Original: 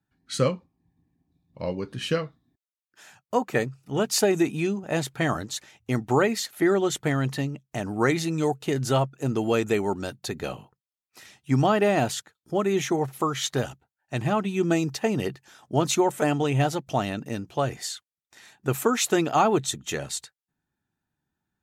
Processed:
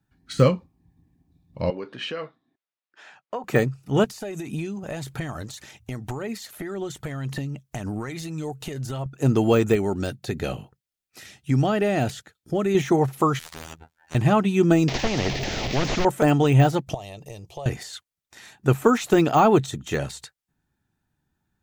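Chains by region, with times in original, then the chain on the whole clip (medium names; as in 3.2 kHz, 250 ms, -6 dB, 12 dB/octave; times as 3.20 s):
1.70–3.44 s: compression 12:1, threshold -28 dBFS + band-pass 370–3400 Hz
4.04–9.06 s: compression 10:1, threshold -34 dBFS + treble shelf 4.9 kHz +4.5 dB + phaser 1.8 Hz, delay 2 ms, feedback 30%
9.75–12.75 s: peaking EQ 1 kHz -7.5 dB 0.5 oct + compression 2:1, threshold -27 dBFS
13.39–14.15 s: low-pass 4 kHz 6 dB/octave + robot voice 80.6 Hz + spectrum-flattening compressor 10:1
14.88–16.05 s: one-bit delta coder 32 kbps, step -39 dBFS + high-order bell 1.2 kHz -15 dB 1.1 oct + spectrum-flattening compressor 4:1
16.94–17.66 s: compression 8:1, threshold -32 dBFS + bass shelf 410 Hz -4.5 dB + static phaser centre 610 Hz, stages 4
whole clip: de-esser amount 90%; bass shelf 100 Hz +9.5 dB; trim +4.5 dB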